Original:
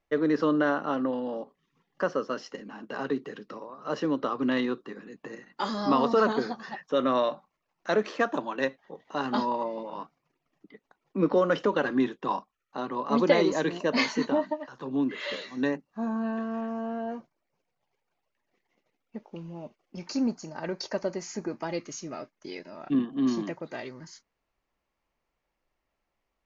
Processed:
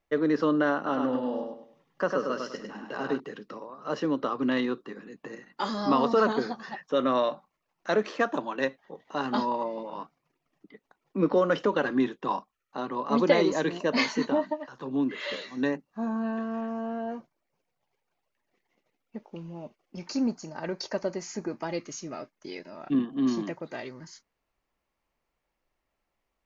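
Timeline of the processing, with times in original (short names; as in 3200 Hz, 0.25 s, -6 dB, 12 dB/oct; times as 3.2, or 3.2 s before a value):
0.76–3.2 feedback echo 0.101 s, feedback 33%, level -4 dB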